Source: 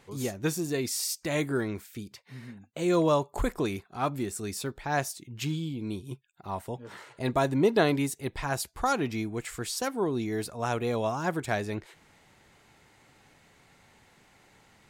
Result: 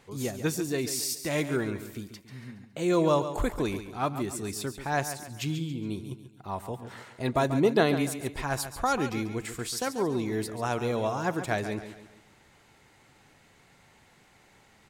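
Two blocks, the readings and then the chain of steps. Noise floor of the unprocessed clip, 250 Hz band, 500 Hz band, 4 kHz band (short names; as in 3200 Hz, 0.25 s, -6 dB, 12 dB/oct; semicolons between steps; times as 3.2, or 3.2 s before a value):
-62 dBFS, +0.5 dB, +0.5 dB, +0.5 dB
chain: feedback echo 0.139 s, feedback 41%, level -11 dB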